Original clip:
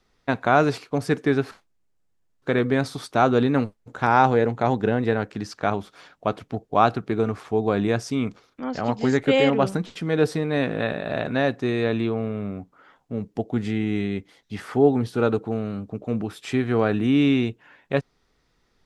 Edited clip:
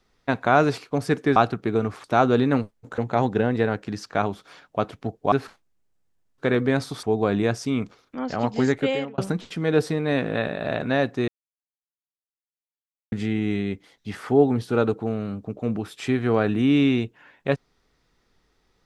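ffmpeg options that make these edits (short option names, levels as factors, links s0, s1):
-filter_complex "[0:a]asplit=9[s0][s1][s2][s3][s4][s5][s6][s7][s8];[s0]atrim=end=1.362[s9];[s1]atrim=start=6.798:end=7.482[s10];[s2]atrim=start=3.068:end=4.012[s11];[s3]atrim=start=4.458:end=6.802[s12];[s4]atrim=start=1.358:end=3.072[s13];[s5]atrim=start=7.478:end=9.63,asetpts=PTS-STARTPTS,afade=t=out:st=1.642:d=0.51[s14];[s6]atrim=start=9.63:end=11.73,asetpts=PTS-STARTPTS,afade=t=in:d=0.004:c=hsin,afade=t=out:st=2.096:d=0.004:c=hsin[s15];[s7]atrim=start=11.73:end=13.57,asetpts=PTS-STARTPTS,volume=0[s16];[s8]atrim=start=13.57,asetpts=PTS-STARTPTS,afade=t=in:d=0.004:c=hsin[s17];[s9][s10]acrossfade=d=0.004:c1=hsin:c2=hsin[s18];[s18][s11]acrossfade=d=0.004:c1=hsin:c2=hsin[s19];[s19][s12]acrossfade=d=0.004:c1=hsin:c2=hsin[s20];[s20][s13]acrossfade=d=0.004:c1=hsin:c2=hsin[s21];[s14][s15][s16][s17]concat=n=4:v=0:a=1[s22];[s21][s22]acrossfade=d=0.004:c1=hsin:c2=hsin"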